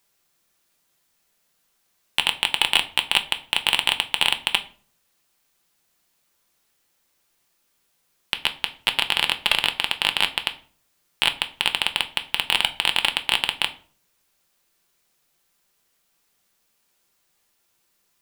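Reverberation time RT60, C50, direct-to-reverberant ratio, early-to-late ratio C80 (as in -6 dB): 0.45 s, 16.5 dB, 7.0 dB, 20.5 dB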